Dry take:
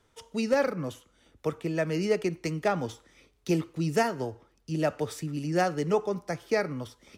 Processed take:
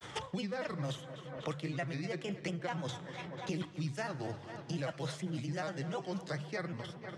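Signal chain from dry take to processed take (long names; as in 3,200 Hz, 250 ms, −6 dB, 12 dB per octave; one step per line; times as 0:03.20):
fade-out on the ending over 1.34 s
noise gate −59 dBFS, range −10 dB
granular cloud, spray 16 ms, pitch spread up and down by 3 semitones
reversed playback
downward compressor 5 to 1, threshold −38 dBFS, peak gain reduction 16 dB
reversed playback
loudspeaker in its box 100–9,800 Hz, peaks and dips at 140 Hz +7 dB, 250 Hz −7 dB, 420 Hz −8 dB, 1,900 Hz +4 dB, 3,400 Hz +6 dB
mains-hum notches 50/100/150 Hz
tape delay 245 ms, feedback 67%, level −15.5 dB, low-pass 4,300 Hz
on a send at −20 dB: convolution reverb RT60 1.2 s, pre-delay 6 ms
on the sum: multiband upward and downward compressor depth 100%
level +3 dB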